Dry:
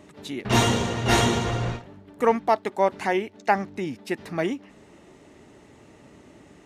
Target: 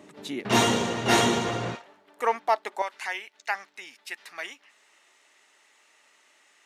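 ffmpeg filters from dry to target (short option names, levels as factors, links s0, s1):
-af "asetnsamples=n=441:p=0,asendcmd='1.75 highpass f 700;2.82 highpass f 1500',highpass=180"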